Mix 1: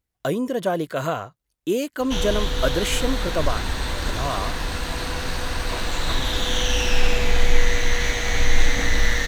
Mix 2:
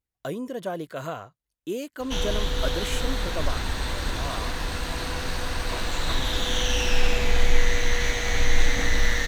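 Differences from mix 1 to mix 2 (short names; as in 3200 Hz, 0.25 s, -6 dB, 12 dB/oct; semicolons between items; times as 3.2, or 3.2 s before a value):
speech -8.0 dB; background: send -11.5 dB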